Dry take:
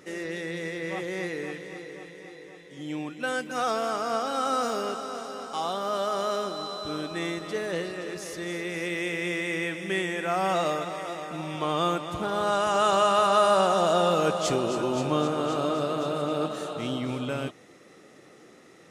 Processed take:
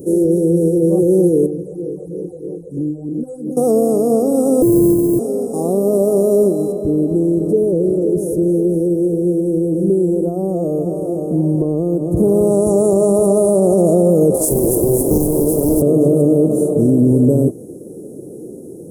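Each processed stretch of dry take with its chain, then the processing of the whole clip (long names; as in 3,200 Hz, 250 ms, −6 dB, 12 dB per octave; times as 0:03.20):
0:01.46–0:03.57: high-shelf EQ 9,000 Hz −11.5 dB + downward compressor, threshold −39 dBFS + all-pass phaser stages 12, 3.1 Hz, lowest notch 270–3,100 Hz
0:04.62–0:05.19: samples sorted by size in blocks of 128 samples + high-shelf EQ 6,300 Hz −8 dB + comb filter 6.6 ms, depth 68%
0:06.72–0:12.17: downward compressor 4 to 1, threshold −31 dBFS + high-shelf EQ 3,300 Hz −9.5 dB
0:14.34–0:15.82: high-pass filter 250 Hz 24 dB per octave + spectral tilt +3.5 dB per octave + highs frequency-modulated by the lows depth 0.82 ms
whole clip: elliptic band-stop filter 440–9,900 Hz, stop band 80 dB; dynamic equaliser 1,100 Hz, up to +3 dB, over −59 dBFS, Q 4.7; boost into a limiter +26.5 dB; level −3.5 dB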